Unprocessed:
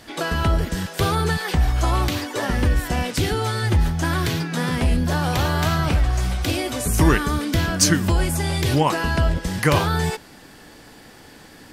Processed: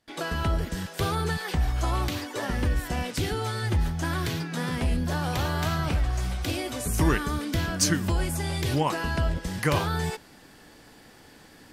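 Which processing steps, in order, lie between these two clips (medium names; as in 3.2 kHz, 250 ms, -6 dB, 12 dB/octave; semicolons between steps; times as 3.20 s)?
gate with hold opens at -36 dBFS; trim -6.5 dB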